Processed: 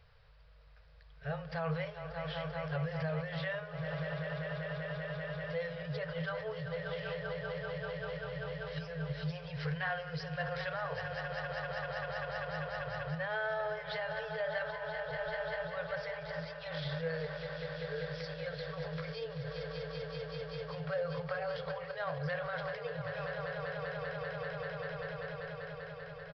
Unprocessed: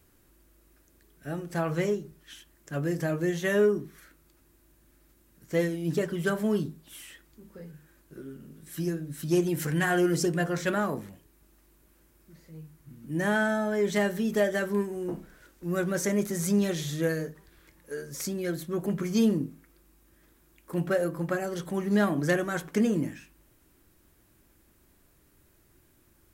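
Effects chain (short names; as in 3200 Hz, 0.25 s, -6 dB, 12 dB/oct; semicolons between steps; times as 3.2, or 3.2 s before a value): swelling echo 0.195 s, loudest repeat 5, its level -13 dB; compressor 2:1, threshold -31 dBFS, peak gain reduction 7 dB; limiter -28 dBFS, peak gain reduction 9 dB; downsampling 11025 Hz; FFT band-reject 170–420 Hz; gain +2.5 dB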